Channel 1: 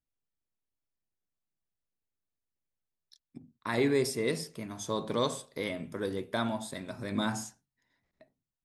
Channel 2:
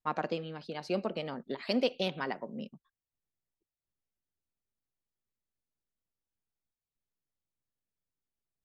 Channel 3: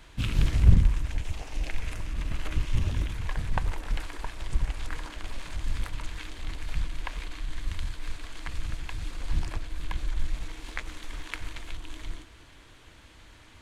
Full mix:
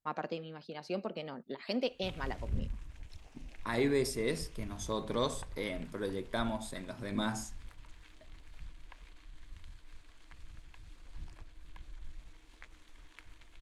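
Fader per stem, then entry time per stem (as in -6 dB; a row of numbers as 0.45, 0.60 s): -3.0, -4.5, -18.5 dB; 0.00, 0.00, 1.85 s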